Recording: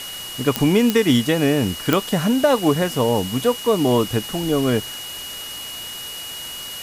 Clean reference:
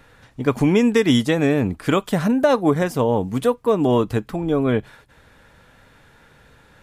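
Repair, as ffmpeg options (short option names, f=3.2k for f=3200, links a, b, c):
-af "adeclick=t=4,bandreject=f=2.9k:w=30,afwtdn=0.02"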